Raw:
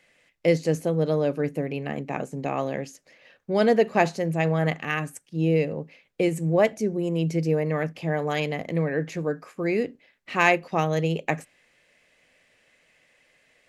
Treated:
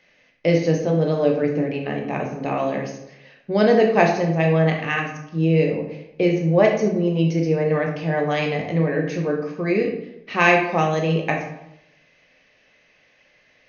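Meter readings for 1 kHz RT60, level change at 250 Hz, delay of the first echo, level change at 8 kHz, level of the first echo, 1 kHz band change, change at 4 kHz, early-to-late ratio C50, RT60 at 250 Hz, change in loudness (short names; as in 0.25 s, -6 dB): 0.80 s, +5.0 dB, none, n/a, none, +4.5 dB, +4.0 dB, 6.0 dB, 0.85 s, +4.5 dB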